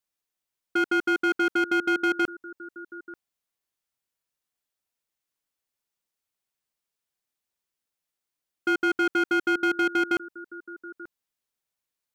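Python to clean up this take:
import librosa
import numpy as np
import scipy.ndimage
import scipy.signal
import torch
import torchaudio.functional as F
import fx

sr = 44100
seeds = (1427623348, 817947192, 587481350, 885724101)

y = fx.fix_declip(x, sr, threshold_db=-19.0)
y = fx.fix_echo_inverse(y, sr, delay_ms=886, level_db=-19.5)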